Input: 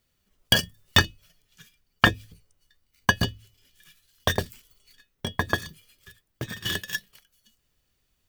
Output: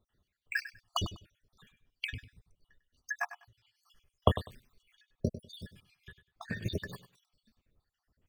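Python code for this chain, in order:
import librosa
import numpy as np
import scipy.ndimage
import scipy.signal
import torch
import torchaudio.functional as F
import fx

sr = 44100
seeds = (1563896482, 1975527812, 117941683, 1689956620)

p1 = fx.spec_dropout(x, sr, seeds[0], share_pct=72)
p2 = fx.lowpass(p1, sr, hz=1500.0, slope=6)
p3 = p2 + fx.echo_feedback(p2, sr, ms=99, feedback_pct=20, wet_db=-13.5, dry=0)
y = p3 * librosa.db_to_amplitude(2.5)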